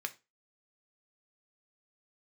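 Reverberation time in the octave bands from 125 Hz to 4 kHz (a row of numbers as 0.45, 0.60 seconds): 0.25, 0.30, 0.25, 0.25, 0.25, 0.25 seconds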